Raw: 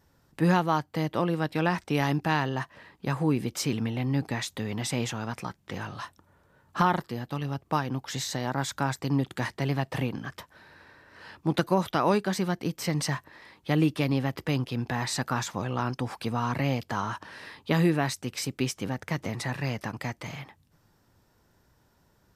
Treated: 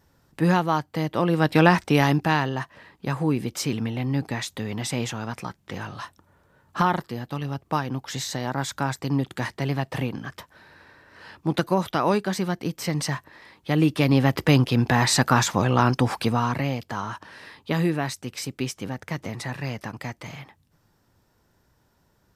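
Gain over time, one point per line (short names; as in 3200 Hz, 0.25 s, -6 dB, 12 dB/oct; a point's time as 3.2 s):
1.14 s +2.5 dB
1.56 s +10.5 dB
2.59 s +2 dB
13.7 s +2 dB
14.34 s +10 dB
16.15 s +10 dB
16.72 s 0 dB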